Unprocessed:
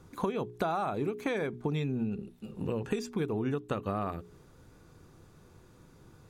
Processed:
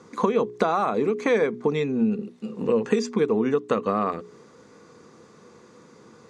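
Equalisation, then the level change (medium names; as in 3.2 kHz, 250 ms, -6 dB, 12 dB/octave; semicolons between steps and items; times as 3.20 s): cabinet simulation 200–8600 Hz, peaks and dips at 220 Hz +9 dB, 470 Hz +10 dB, 1.1 kHz +8 dB, 2 kHz +7 dB, 4.6 kHz +4 dB; peaking EQ 6.3 kHz +5 dB 0.47 oct; +5.0 dB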